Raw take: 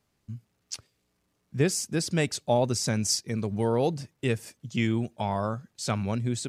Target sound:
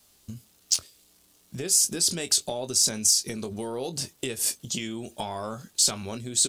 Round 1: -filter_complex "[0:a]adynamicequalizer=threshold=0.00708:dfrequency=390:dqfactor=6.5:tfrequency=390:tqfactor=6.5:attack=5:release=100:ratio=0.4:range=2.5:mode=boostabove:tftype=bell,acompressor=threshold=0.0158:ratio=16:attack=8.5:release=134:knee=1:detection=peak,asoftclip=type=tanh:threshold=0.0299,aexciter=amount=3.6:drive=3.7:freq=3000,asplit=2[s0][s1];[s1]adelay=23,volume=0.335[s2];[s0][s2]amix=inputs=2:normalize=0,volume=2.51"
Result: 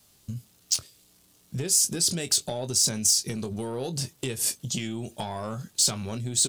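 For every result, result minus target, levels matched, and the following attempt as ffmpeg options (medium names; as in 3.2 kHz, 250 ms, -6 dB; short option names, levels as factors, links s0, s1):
125 Hz band +7.0 dB; saturation: distortion +10 dB
-filter_complex "[0:a]adynamicequalizer=threshold=0.00708:dfrequency=390:dqfactor=6.5:tfrequency=390:tqfactor=6.5:attack=5:release=100:ratio=0.4:range=2.5:mode=boostabove:tftype=bell,acompressor=threshold=0.0158:ratio=16:attack=8.5:release=134:knee=1:detection=peak,equalizer=f=130:t=o:w=1:g=-8.5,asoftclip=type=tanh:threshold=0.0299,aexciter=amount=3.6:drive=3.7:freq=3000,asplit=2[s0][s1];[s1]adelay=23,volume=0.335[s2];[s0][s2]amix=inputs=2:normalize=0,volume=2.51"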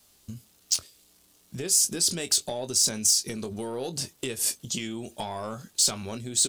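saturation: distortion +10 dB
-filter_complex "[0:a]adynamicequalizer=threshold=0.00708:dfrequency=390:dqfactor=6.5:tfrequency=390:tqfactor=6.5:attack=5:release=100:ratio=0.4:range=2.5:mode=boostabove:tftype=bell,acompressor=threshold=0.0158:ratio=16:attack=8.5:release=134:knee=1:detection=peak,equalizer=f=130:t=o:w=1:g=-8.5,asoftclip=type=tanh:threshold=0.0631,aexciter=amount=3.6:drive=3.7:freq=3000,asplit=2[s0][s1];[s1]adelay=23,volume=0.335[s2];[s0][s2]amix=inputs=2:normalize=0,volume=2.51"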